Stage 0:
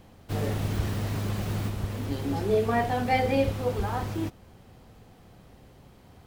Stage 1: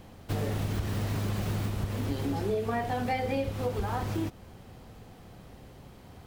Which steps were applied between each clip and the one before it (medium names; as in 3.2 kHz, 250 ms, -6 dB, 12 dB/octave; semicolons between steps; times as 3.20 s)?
compression, threshold -30 dBFS, peak gain reduction 11 dB; trim +3 dB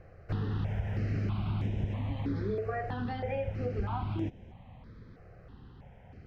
distance through air 250 m; stepped phaser 3.1 Hz 930–4400 Hz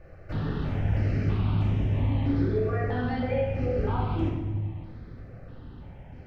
simulated room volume 790 m³, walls mixed, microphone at 2.5 m